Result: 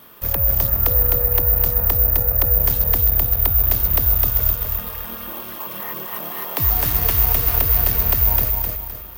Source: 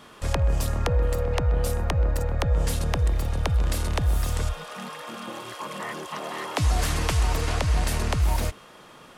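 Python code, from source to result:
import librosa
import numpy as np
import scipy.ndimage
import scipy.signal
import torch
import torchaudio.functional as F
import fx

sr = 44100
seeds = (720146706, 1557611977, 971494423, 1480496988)

p1 = x + fx.echo_feedback(x, sr, ms=258, feedback_pct=38, wet_db=-3.5, dry=0)
p2 = (np.kron(scipy.signal.resample_poly(p1, 1, 3), np.eye(3)[0]) * 3)[:len(p1)]
y = p2 * 10.0 ** (-1.5 / 20.0)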